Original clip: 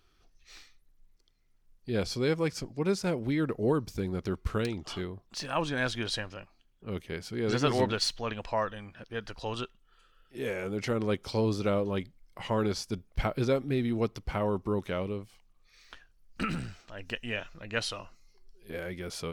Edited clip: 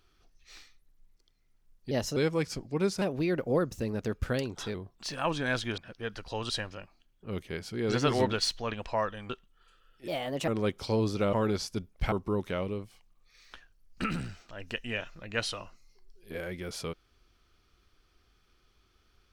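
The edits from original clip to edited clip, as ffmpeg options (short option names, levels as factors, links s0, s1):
-filter_complex "[0:a]asplit=12[s0][s1][s2][s3][s4][s5][s6][s7][s8][s9][s10][s11];[s0]atrim=end=1.914[s12];[s1]atrim=start=1.91:end=2.22,asetpts=PTS-STARTPTS,asetrate=53361,aresample=44100,atrim=end_sample=11298,asetpts=PTS-STARTPTS[s13];[s2]atrim=start=2.216:end=3.074[s14];[s3]atrim=start=3.07:end=5.06,asetpts=PTS-STARTPTS,asetrate=50715,aresample=44100,atrim=end_sample=76312,asetpts=PTS-STARTPTS[s15];[s4]atrim=start=5.056:end=6.092[s16];[s5]atrim=start=8.888:end=9.612[s17];[s6]atrim=start=6.088:end=8.892[s18];[s7]atrim=start=9.608:end=10.394[s19];[s8]atrim=start=10.39:end=10.93,asetpts=PTS-STARTPTS,asetrate=59094,aresample=44100[s20];[s9]atrim=start=10.926:end=11.782[s21];[s10]atrim=start=12.488:end=13.282[s22];[s11]atrim=start=14.508[s23];[s12][s13]acrossfade=d=0.004:c1=hsin:c2=hsin[s24];[s24][s14]acrossfade=d=0.004:c1=hsin:c2=hsin[s25];[s25][s15]acrossfade=d=0.004:c1=hsin:c2=hsin[s26];[s26][s16]acrossfade=d=0.004:c1=hsin:c2=hsin[s27];[s27][s17]acrossfade=d=0.004:c1=hsin:c2=hsin[s28];[s28][s18]acrossfade=d=0.004:c1=hsin:c2=hsin[s29];[s29][s19]acrossfade=d=0.004:c1=hsin:c2=hsin[s30];[s30][s20]acrossfade=d=0.004:c1=hsin:c2=hsin[s31];[s31][s21]acrossfade=d=0.004:c1=hsin:c2=hsin[s32];[s32][s22]acrossfade=d=0.004:c1=hsin:c2=hsin[s33];[s33][s23]acrossfade=d=0.004:c1=hsin:c2=hsin"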